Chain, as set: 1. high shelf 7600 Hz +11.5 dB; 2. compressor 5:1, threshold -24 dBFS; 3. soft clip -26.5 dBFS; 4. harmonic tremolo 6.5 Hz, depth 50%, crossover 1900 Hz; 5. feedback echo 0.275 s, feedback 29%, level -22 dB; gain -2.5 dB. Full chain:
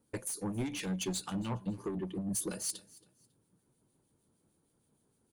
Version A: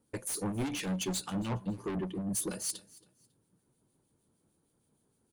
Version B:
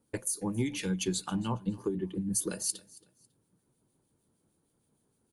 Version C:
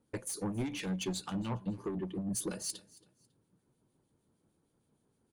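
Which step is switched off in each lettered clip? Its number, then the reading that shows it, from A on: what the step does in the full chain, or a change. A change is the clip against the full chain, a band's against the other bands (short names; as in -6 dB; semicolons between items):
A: 2, mean gain reduction 4.0 dB; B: 3, distortion -11 dB; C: 1, 8 kHz band -2.5 dB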